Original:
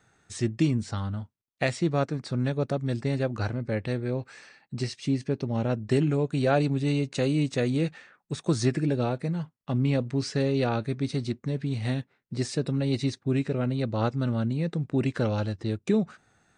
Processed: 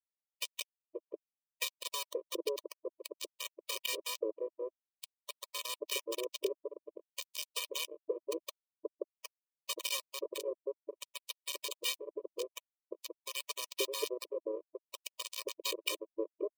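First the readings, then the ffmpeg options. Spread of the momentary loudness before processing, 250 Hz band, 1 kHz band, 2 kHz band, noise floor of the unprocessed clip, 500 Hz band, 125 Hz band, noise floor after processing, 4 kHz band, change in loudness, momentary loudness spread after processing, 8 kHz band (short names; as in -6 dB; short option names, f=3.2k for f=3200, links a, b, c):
7 LU, -24.0 dB, -13.0 dB, -7.5 dB, -73 dBFS, -10.5 dB, under -40 dB, under -85 dBFS, +1.0 dB, -11.5 dB, 12 LU, +2.0 dB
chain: -filter_complex "[0:a]anlmdn=0.0631,lowshelf=f=200:g=-10.5,aecho=1:1:4.2:0.91,alimiter=limit=-15.5dB:level=0:latency=1:release=447,acompressor=threshold=-32dB:ratio=16,lowpass=f=3.1k:t=q:w=3.6,tremolo=f=0.51:d=0.48,adynamicsmooth=sensitivity=2.5:basefreq=2.1k,acrusher=bits=4:mix=0:aa=0.000001,asuperstop=centerf=1500:order=4:qfactor=0.97,acrossover=split=770[a][b];[a]adelay=530[c];[c][b]amix=inputs=2:normalize=0,afftfilt=real='re*eq(mod(floor(b*sr/1024/320),2),1)':imag='im*eq(mod(floor(b*sr/1024/320),2),1)':win_size=1024:overlap=0.75,volume=8dB"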